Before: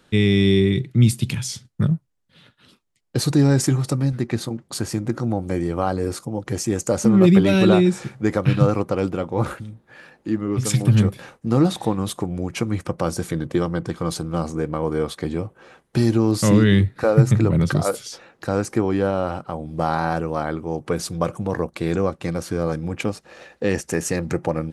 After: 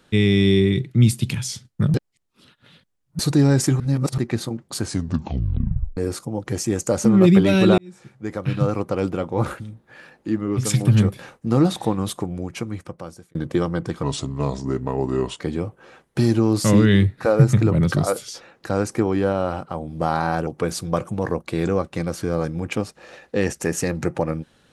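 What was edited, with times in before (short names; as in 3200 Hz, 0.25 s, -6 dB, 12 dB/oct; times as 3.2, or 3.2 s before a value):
1.94–3.19 reverse
3.8–4.18 reverse
4.81 tape stop 1.16 s
7.78–9.11 fade in
12.07–13.35 fade out
14.03–15.18 speed 84%
20.25–20.75 cut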